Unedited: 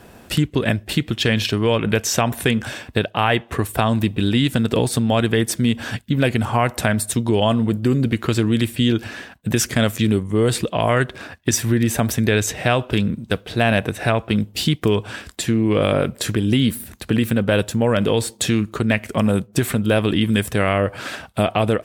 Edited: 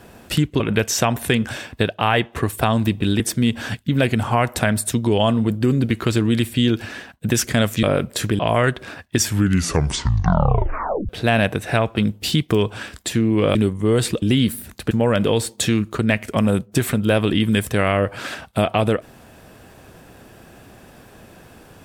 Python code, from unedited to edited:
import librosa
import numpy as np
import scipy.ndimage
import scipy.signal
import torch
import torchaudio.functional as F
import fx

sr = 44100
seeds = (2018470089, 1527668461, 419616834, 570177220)

y = fx.edit(x, sr, fx.cut(start_s=0.6, length_s=1.16),
    fx.cut(start_s=4.36, length_s=1.06),
    fx.swap(start_s=10.05, length_s=0.67, other_s=15.88, other_length_s=0.56),
    fx.tape_stop(start_s=11.49, length_s=1.93),
    fx.cut(start_s=17.13, length_s=0.59), tone=tone)